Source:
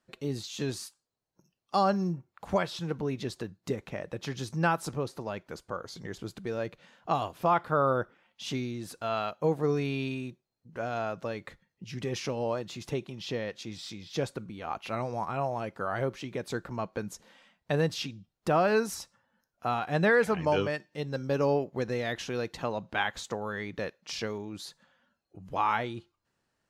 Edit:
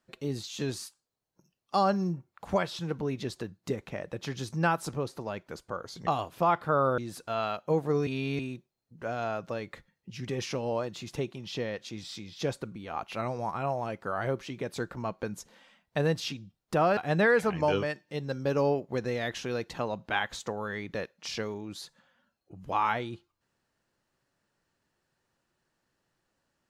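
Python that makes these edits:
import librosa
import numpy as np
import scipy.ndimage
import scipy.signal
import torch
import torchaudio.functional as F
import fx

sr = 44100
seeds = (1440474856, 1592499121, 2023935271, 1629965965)

y = fx.edit(x, sr, fx.cut(start_s=6.07, length_s=1.03),
    fx.cut(start_s=8.01, length_s=0.71),
    fx.reverse_span(start_s=9.81, length_s=0.32),
    fx.cut(start_s=18.71, length_s=1.1), tone=tone)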